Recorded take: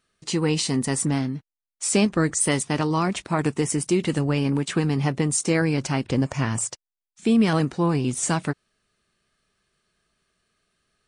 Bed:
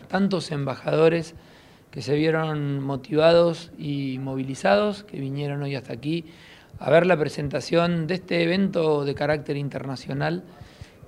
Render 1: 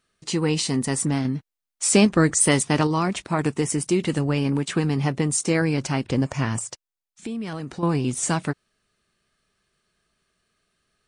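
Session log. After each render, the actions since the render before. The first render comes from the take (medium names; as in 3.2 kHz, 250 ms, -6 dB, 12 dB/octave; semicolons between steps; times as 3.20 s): 1.25–2.87 s: gain +3.5 dB; 6.59–7.83 s: compression, threshold -28 dBFS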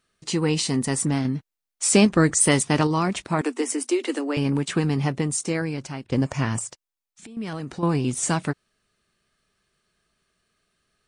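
3.41–4.37 s: Chebyshev high-pass 240 Hz, order 10; 4.94–6.12 s: fade out, to -12.5 dB; 6.71–7.37 s: compression 10:1, threshold -39 dBFS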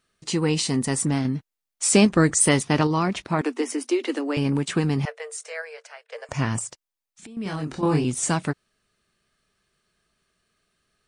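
2.49–4.25 s: peaking EQ 8.2 kHz -9 dB 0.54 oct; 5.05–6.29 s: rippled Chebyshev high-pass 440 Hz, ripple 9 dB; 7.43–8.04 s: doubling 26 ms -2 dB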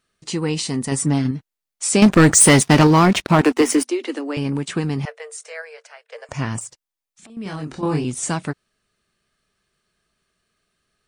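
0.91–1.31 s: comb 7 ms, depth 82%; 2.02–3.87 s: waveshaping leveller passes 3; 6.60–7.30 s: transformer saturation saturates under 2.6 kHz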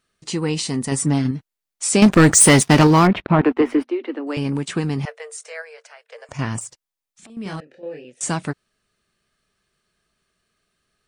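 3.07–4.27 s: distance through air 460 m; 5.62–6.39 s: compression 1.5:1, threshold -40 dBFS; 7.60–8.21 s: vowel filter e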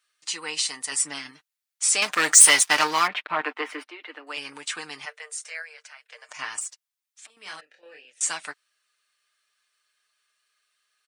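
high-pass 1.3 kHz 12 dB/octave; comb 6.6 ms, depth 50%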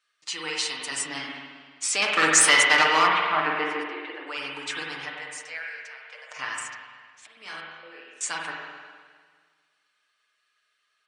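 distance through air 59 m; spring tank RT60 1.7 s, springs 44/50 ms, chirp 65 ms, DRR -1 dB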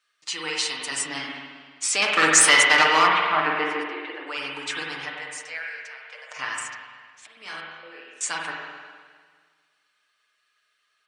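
trim +2 dB; peak limiter -3 dBFS, peak gain reduction 1 dB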